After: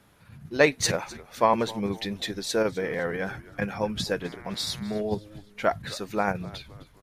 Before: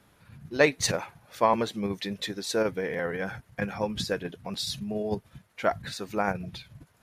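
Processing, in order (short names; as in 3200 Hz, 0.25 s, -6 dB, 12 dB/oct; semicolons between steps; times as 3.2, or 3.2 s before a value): frequency-shifting echo 0.257 s, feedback 46%, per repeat -110 Hz, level -19.5 dB; 4.2–5 buzz 120 Hz, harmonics 19, -50 dBFS 0 dB/oct; gain +1.5 dB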